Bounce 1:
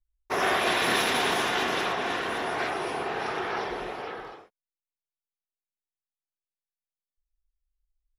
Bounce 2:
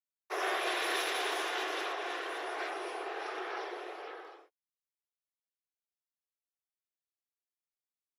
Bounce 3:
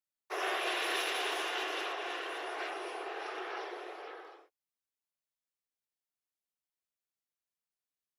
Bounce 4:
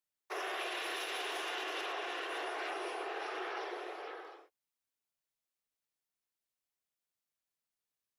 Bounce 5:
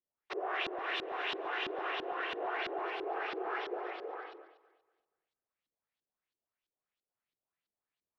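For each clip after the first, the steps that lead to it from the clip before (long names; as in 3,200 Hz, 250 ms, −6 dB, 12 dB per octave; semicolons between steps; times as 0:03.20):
Butterworth high-pass 310 Hz 96 dB per octave; notch filter 920 Hz, Q 18; level −8 dB
dynamic equaliser 2,800 Hz, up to +6 dB, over −55 dBFS, Q 6.1; level −1.5 dB
brickwall limiter −31 dBFS, peak gain reduction 9.5 dB; level +1 dB
auto-filter low-pass saw up 3 Hz 310–4,200 Hz; delay that swaps between a low-pass and a high-pass 119 ms, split 990 Hz, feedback 55%, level −10.5 dB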